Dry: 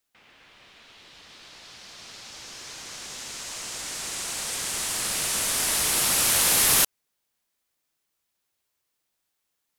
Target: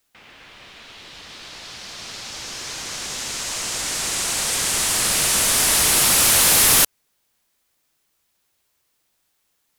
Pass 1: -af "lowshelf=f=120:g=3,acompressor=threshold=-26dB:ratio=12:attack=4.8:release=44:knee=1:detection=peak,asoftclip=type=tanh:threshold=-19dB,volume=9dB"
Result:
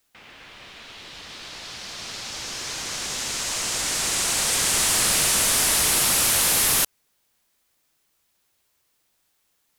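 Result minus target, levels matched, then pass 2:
compressor: peak gain reduction +9.5 dB
-af "lowshelf=f=120:g=3,asoftclip=type=tanh:threshold=-19dB,volume=9dB"

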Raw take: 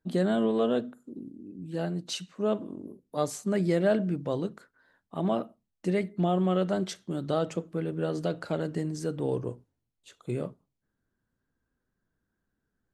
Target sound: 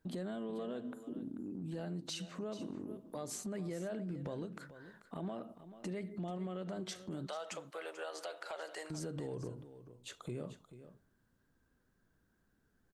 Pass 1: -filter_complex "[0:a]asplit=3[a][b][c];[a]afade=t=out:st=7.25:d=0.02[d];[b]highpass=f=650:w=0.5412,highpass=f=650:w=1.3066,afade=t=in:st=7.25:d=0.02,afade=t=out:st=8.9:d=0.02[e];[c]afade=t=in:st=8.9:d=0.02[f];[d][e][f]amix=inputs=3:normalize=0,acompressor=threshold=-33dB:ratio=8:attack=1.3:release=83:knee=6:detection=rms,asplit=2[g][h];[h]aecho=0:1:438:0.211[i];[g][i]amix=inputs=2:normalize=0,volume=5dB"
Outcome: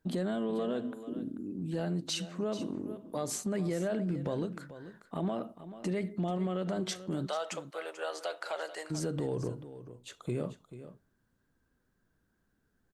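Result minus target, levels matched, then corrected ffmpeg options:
compressor: peak gain reduction -8.5 dB
-filter_complex "[0:a]asplit=3[a][b][c];[a]afade=t=out:st=7.25:d=0.02[d];[b]highpass=f=650:w=0.5412,highpass=f=650:w=1.3066,afade=t=in:st=7.25:d=0.02,afade=t=out:st=8.9:d=0.02[e];[c]afade=t=in:st=8.9:d=0.02[f];[d][e][f]amix=inputs=3:normalize=0,acompressor=threshold=-42.5dB:ratio=8:attack=1.3:release=83:knee=6:detection=rms,asplit=2[g][h];[h]aecho=0:1:438:0.211[i];[g][i]amix=inputs=2:normalize=0,volume=5dB"

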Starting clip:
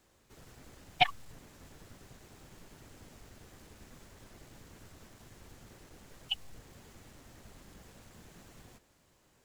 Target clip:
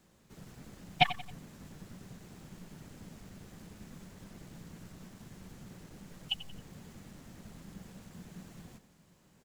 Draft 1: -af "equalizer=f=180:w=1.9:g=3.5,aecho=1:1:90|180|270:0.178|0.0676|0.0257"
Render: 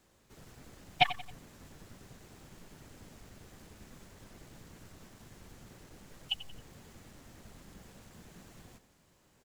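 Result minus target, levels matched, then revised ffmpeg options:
250 Hz band -14.0 dB
-af "equalizer=f=180:w=1.9:g=13,aecho=1:1:90|180|270:0.178|0.0676|0.0257"

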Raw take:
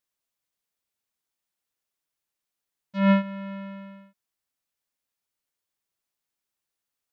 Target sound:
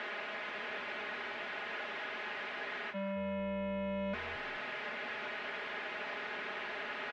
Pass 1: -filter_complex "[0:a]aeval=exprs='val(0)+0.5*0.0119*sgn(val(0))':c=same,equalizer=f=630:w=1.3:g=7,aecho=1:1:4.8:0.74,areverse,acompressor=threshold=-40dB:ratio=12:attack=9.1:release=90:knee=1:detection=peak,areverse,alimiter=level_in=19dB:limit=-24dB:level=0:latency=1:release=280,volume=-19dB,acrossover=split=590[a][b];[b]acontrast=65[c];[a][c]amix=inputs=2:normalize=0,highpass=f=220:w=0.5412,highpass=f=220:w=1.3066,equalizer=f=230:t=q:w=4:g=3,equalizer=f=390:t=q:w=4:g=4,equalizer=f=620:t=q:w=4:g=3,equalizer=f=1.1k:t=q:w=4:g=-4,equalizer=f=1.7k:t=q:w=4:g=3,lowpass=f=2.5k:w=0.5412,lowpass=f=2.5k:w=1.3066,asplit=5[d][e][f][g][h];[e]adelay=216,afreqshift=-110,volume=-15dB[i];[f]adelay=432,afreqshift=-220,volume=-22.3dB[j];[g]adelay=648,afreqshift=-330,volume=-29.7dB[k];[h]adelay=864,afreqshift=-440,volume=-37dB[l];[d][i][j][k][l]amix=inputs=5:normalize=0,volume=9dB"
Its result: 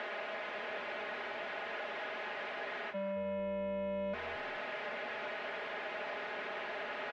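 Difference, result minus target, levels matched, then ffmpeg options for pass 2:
500 Hz band +3.0 dB
-filter_complex "[0:a]aeval=exprs='val(0)+0.5*0.0119*sgn(val(0))':c=same,aecho=1:1:4.8:0.74,areverse,acompressor=threshold=-40dB:ratio=12:attack=9.1:release=90:knee=1:detection=peak,areverse,alimiter=level_in=19dB:limit=-24dB:level=0:latency=1:release=280,volume=-19dB,acrossover=split=590[a][b];[b]acontrast=65[c];[a][c]amix=inputs=2:normalize=0,highpass=f=220:w=0.5412,highpass=f=220:w=1.3066,equalizer=f=230:t=q:w=4:g=3,equalizer=f=390:t=q:w=4:g=4,equalizer=f=620:t=q:w=4:g=3,equalizer=f=1.1k:t=q:w=4:g=-4,equalizer=f=1.7k:t=q:w=4:g=3,lowpass=f=2.5k:w=0.5412,lowpass=f=2.5k:w=1.3066,asplit=5[d][e][f][g][h];[e]adelay=216,afreqshift=-110,volume=-15dB[i];[f]adelay=432,afreqshift=-220,volume=-22.3dB[j];[g]adelay=648,afreqshift=-330,volume=-29.7dB[k];[h]adelay=864,afreqshift=-440,volume=-37dB[l];[d][i][j][k][l]amix=inputs=5:normalize=0,volume=9dB"

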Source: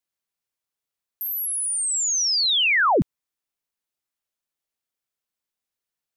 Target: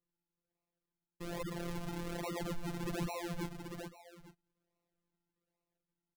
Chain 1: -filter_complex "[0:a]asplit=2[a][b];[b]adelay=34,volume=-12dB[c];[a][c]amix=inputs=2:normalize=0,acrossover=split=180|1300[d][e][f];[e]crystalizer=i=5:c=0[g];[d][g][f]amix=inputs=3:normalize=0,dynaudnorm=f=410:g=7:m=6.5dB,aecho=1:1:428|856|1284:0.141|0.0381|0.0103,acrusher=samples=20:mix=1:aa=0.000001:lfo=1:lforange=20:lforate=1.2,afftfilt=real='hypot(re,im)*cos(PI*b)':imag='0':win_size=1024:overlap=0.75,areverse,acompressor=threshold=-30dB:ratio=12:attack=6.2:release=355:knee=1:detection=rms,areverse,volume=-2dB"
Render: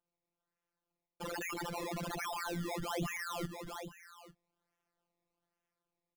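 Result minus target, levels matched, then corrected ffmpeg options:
decimation with a swept rate: distortion -8 dB
-filter_complex "[0:a]asplit=2[a][b];[b]adelay=34,volume=-12dB[c];[a][c]amix=inputs=2:normalize=0,acrossover=split=180|1300[d][e][f];[e]crystalizer=i=5:c=0[g];[d][g][f]amix=inputs=3:normalize=0,dynaudnorm=f=410:g=7:m=6.5dB,aecho=1:1:428|856|1284:0.141|0.0381|0.0103,acrusher=samples=53:mix=1:aa=0.000001:lfo=1:lforange=53:lforate=1.2,afftfilt=real='hypot(re,im)*cos(PI*b)':imag='0':win_size=1024:overlap=0.75,areverse,acompressor=threshold=-30dB:ratio=12:attack=6.2:release=355:knee=1:detection=rms,areverse,volume=-2dB"

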